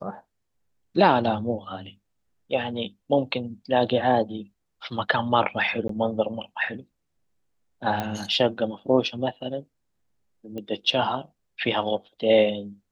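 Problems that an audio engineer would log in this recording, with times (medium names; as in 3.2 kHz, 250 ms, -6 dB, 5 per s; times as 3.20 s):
5.88–5.89 s: dropout 13 ms
8.00 s: pop -14 dBFS
10.58 s: pop -23 dBFS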